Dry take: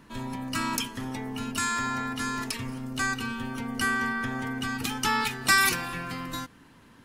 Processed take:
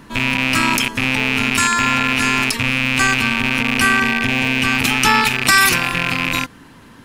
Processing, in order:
loose part that buzzes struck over −40 dBFS, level −17 dBFS
0:04.03–0:04.64: parametric band 1,300 Hz −9.5 dB 0.34 octaves
boost into a limiter +12.5 dB
level −1 dB

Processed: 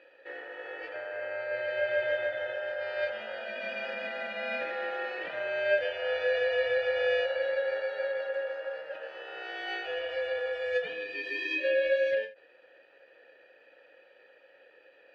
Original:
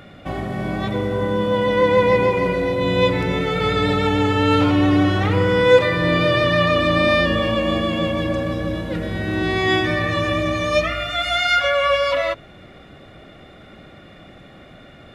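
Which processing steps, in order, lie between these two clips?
ring modulation 1,100 Hz
formant filter e
every ending faded ahead of time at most 160 dB per second

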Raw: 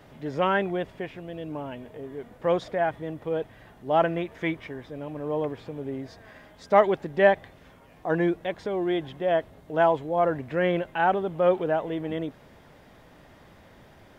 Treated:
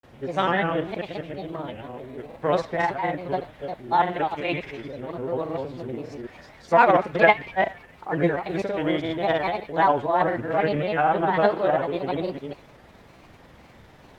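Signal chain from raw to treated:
delay that plays each chunk backwards 196 ms, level −4 dB
formants moved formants +2 semitones
feedback echo with a band-pass in the loop 72 ms, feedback 60%, band-pass 2,400 Hz, level −13 dB
granular cloud, spray 37 ms, pitch spread up and down by 3 semitones
level +2 dB

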